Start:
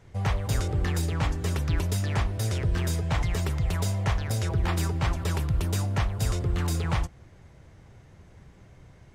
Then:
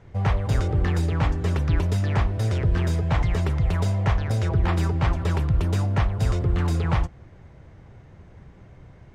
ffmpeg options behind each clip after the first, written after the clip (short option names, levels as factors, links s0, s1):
-af "aemphasis=mode=reproduction:type=75kf,volume=1.68"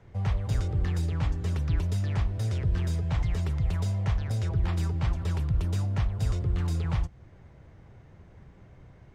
-filter_complex "[0:a]acrossover=split=190|3000[s0][s1][s2];[s1]acompressor=threshold=0.00501:ratio=1.5[s3];[s0][s3][s2]amix=inputs=3:normalize=0,volume=0.596"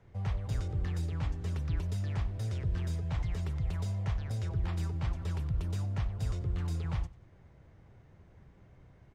-af "aecho=1:1:93|186|279:0.0944|0.033|0.0116,volume=0.501"